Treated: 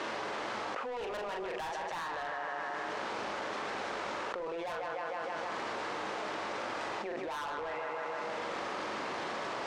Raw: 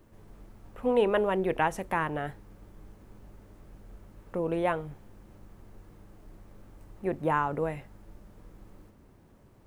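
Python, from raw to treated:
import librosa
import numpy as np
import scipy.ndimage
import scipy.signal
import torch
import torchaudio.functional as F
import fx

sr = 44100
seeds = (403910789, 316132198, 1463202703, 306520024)

y = fx.cvsd(x, sr, bps=64000)
y = fx.bandpass_edges(y, sr, low_hz=740.0, high_hz=4900.0)
y = fx.air_absorb(y, sr, metres=74.0)
y = fx.doubler(y, sr, ms=42.0, db=-6)
y = fx.echo_feedback(y, sr, ms=156, feedback_pct=49, wet_db=-10.0)
y = 10.0 ** (-34.5 / 20.0) * np.tanh(y / 10.0 ** (-34.5 / 20.0))
y = fx.env_flatten(y, sr, amount_pct=100)
y = F.gain(torch.from_numpy(y), -2.0).numpy()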